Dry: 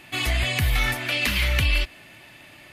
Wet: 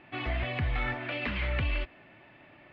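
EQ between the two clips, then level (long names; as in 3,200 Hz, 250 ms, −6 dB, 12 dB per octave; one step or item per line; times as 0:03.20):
high-frequency loss of the air 290 metres
head-to-tape spacing loss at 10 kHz 29 dB
low-shelf EQ 180 Hz −9 dB
0.0 dB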